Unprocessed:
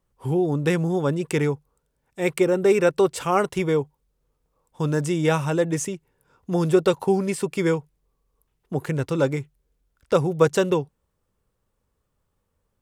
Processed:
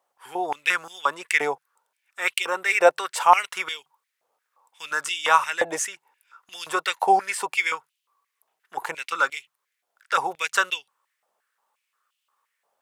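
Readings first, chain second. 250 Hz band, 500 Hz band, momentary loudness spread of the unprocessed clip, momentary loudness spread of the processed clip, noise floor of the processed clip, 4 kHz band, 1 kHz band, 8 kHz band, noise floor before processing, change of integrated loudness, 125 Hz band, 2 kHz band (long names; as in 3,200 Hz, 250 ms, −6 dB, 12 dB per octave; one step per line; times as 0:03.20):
−17.5 dB, −7.5 dB, 9 LU, 15 LU, −80 dBFS, +7.0 dB, +7.5 dB, +3.0 dB, −75 dBFS, −0.5 dB, below −30 dB, +8.5 dB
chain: high-pass on a step sequencer 5.7 Hz 720–2,900 Hz
level +2.5 dB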